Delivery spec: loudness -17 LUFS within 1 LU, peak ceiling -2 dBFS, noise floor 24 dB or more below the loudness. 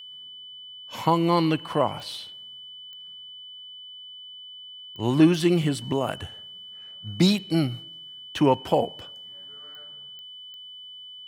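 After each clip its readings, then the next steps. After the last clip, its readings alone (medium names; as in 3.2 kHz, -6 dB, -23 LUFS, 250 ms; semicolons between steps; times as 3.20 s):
clicks found 6; steady tone 3 kHz; tone level -40 dBFS; loudness -24.0 LUFS; peak level -6.5 dBFS; loudness target -17.0 LUFS
-> de-click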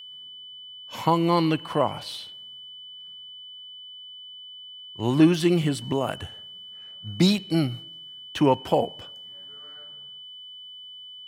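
clicks found 0; steady tone 3 kHz; tone level -40 dBFS
-> band-stop 3 kHz, Q 30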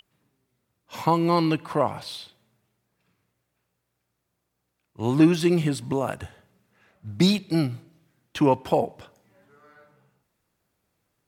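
steady tone not found; loudness -23.5 LUFS; peak level -6.5 dBFS; loudness target -17.0 LUFS
-> trim +6.5 dB; peak limiter -2 dBFS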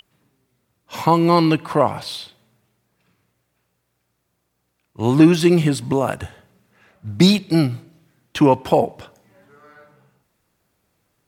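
loudness -17.5 LUFS; peak level -2.0 dBFS; noise floor -72 dBFS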